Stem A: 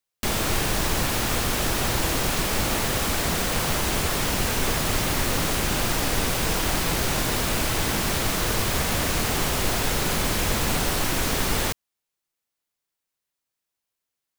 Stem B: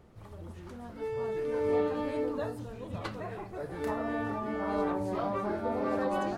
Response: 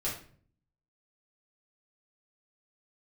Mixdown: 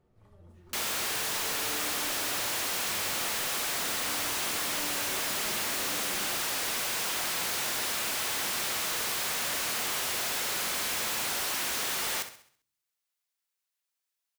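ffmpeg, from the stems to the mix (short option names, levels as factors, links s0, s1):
-filter_complex "[0:a]highpass=f=1200:p=1,adelay=500,volume=0.841,asplit=3[s0][s1][s2];[s1]volume=0.0841[s3];[s2]volume=0.2[s4];[1:a]volume=0.158,asplit=2[s5][s6];[s6]volume=0.531[s7];[2:a]atrim=start_sample=2205[s8];[s3][s7]amix=inputs=2:normalize=0[s9];[s9][s8]afir=irnorm=-1:irlink=0[s10];[s4]aecho=0:1:66|132|198|264|330|396:1|0.44|0.194|0.0852|0.0375|0.0165[s11];[s0][s5][s10][s11]amix=inputs=4:normalize=0,asoftclip=type=hard:threshold=0.0376"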